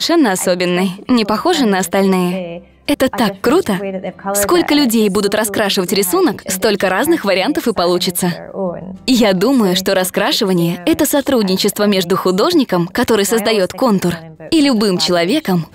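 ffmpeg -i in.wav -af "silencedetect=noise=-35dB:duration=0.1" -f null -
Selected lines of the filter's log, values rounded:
silence_start: 2.66
silence_end: 2.88 | silence_duration: 0.22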